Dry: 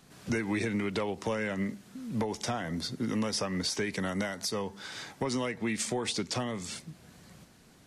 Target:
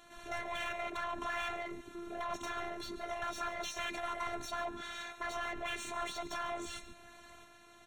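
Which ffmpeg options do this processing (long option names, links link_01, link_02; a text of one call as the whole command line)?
ffmpeg -i in.wav -filter_complex "[0:a]afwtdn=0.02,afftfilt=real='re*lt(hypot(re,im),0.0282)':imag='im*lt(hypot(re,im),0.0282)':win_size=1024:overlap=0.75,equalizer=frequency=490:width=1.7:gain=4.5,asplit=2[link_01][link_02];[link_02]highpass=frequency=720:poles=1,volume=28dB,asoftclip=type=tanh:threshold=-30dB[link_03];[link_01][link_03]amix=inputs=2:normalize=0,lowpass=frequency=2100:poles=1,volume=-6dB,afftfilt=real='hypot(re,im)*cos(PI*b)':imag='0':win_size=512:overlap=0.75,asuperstop=centerf=4900:order=12:qfactor=5.2,lowshelf=frequency=230:width_type=q:width=3:gain=7.5,aecho=1:1:143:0.168,volume=5dB" out.wav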